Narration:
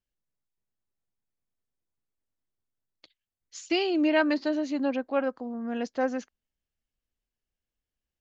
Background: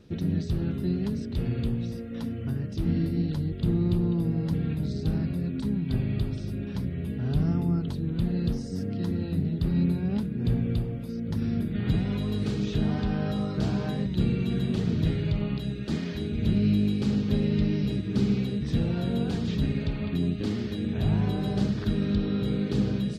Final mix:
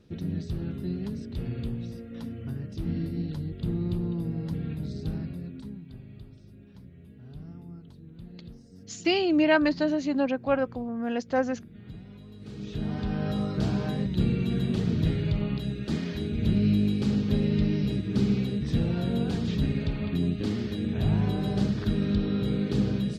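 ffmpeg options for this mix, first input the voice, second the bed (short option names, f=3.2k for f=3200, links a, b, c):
-filter_complex "[0:a]adelay=5350,volume=2dB[a];[1:a]volume=13.5dB,afade=t=out:st=5.04:d=0.9:silence=0.211349,afade=t=in:st=12.39:d=0.96:silence=0.125893[b];[a][b]amix=inputs=2:normalize=0"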